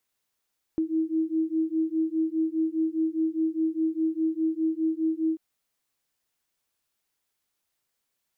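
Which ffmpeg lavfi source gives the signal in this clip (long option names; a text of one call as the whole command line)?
ffmpeg -f lavfi -i "aevalsrc='0.0473*(sin(2*PI*318*t)+sin(2*PI*322.9*t))':duration=4.59:sample_rate=44100" out.wav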